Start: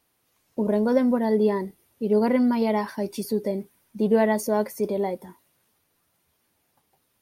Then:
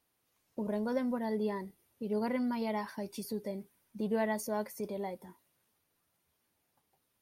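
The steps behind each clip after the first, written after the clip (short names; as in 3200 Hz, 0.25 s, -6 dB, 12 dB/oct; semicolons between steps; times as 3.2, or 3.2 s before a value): dynamic EQ 360 Hz, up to -6 dB, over -33 dBFS, Q 0.79; gain -8 dB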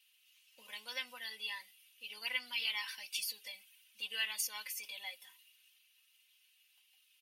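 resonant high-pass 2800 Hz, resonance Q 6.2; comb 3.9 ms, depth 87%; gain +3.5 dB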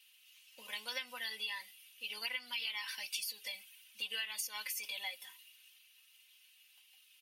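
compressor 6:1, threshold -42 dBFS, peak gain reduction 11 dB; gain +5.5 dB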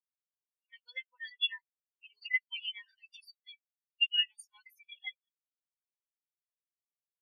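spectral expander 4:1; gain +6 dB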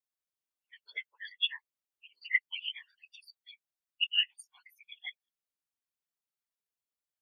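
whisperiser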